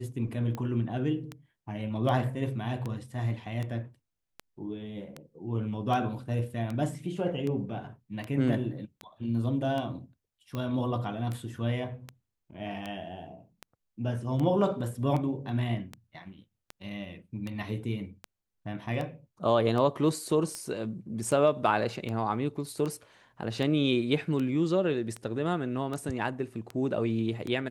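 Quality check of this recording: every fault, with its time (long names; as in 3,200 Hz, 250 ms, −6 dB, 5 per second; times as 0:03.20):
scratch tick 78 rpm −22 dBFS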